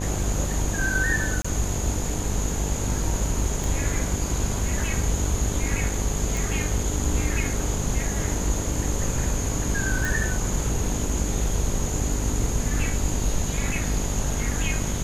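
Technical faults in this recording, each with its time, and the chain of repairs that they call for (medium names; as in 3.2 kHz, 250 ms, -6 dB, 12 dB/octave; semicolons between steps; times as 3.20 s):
buzz 50 Hz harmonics 20 -29 dBFS
1.42–1.45 s: dropout 25 ms
3.64 s: pop
6.37 s: pop
10.05 s: pop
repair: de-click; de-hum 50 Hz, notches 20; interpolate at 1.42 s, 25 ms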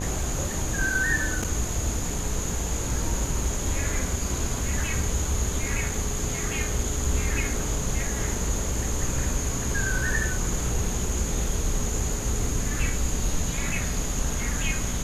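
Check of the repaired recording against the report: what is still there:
nothing left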